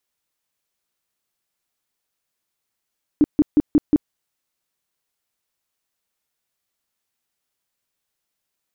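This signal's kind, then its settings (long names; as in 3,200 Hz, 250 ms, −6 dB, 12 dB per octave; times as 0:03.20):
tone bursts 298 Hz, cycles 9, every 0.18 s, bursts 5, −9.5 dBFS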